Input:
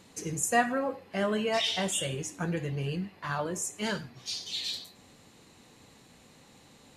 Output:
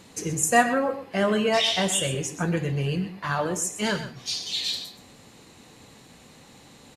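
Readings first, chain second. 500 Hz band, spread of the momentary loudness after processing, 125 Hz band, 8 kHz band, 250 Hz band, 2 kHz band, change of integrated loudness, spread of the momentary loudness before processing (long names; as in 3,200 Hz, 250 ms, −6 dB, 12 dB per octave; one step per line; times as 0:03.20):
+6.5 dB, 9 LU, +6.5 dB, +6.0 dB, +6.0 dB, +6.0 dB, +6.0 dB, 10 LU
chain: single-tap delay 127 ms −12.5 dB
level +6 dB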